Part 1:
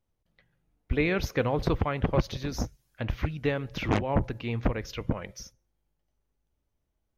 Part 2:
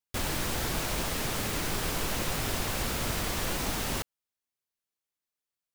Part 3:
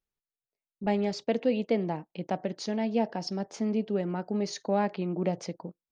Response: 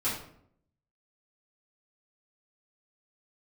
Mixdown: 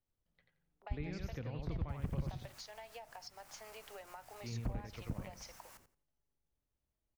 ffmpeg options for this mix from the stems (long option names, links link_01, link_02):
-filter_complex "[0:a]volume=-10.5dB,asplit=3[link_01][link_02][link_03];[link_01]atrim=end=2.41,asetpts=PTS-STARTPTS,afade=type=out:start_time=2.406:duration=0.004:curve=hsin[link_04];[link_02]atrim=start=2.41:end=4.41,asetpts=PTS-STARTPTS,volume=0[link_05];[link_03]atrim=start=4.41,asetpts=PTS-STARTPTS,afade=type=in:duration=0.004:curve=hsin[link_06];[link_04][link_05][link_06]concat=n=3:v=0:a=1,asplit=2[link_07][link_08];[link_08]volume=-4dB[link_09];[1:a]asoftclip=type=tanh:threshold=-26.5dB,equalizer=frequency=3500:width=1.6:gain=-8,adelay=1750,volume=-19.5dB,asplit=2[link_10][link_11];[link_11]volume=-13dB[link_12];[2:a]agate=range=-8dB:threshold=-51dB:ratio=16:detection=peak,volume=-2.5dB[link_13];[link_10][link_13]amix=inputs=2:normalize=0,highpass=frequency=720:width=0.5412,highpass=frequency=720:width=1.3066,acompressor=threshold=-39dB:ratio=6,volume=0dB[link_14];[link_09][link_12]amix=inputs=2:normalize=0,aecho=0:1:87|174|261:1|0.2|0.04[link_15];[link_07][link_14][link_15]amix=inputs=3:normalize=0,acrossover=split=210[link_16][link_17];[link_17]acompressor=threshold=-48dB:ratio=6[link_18];[link_16][link_18]amix=inputs=2:normalize=0"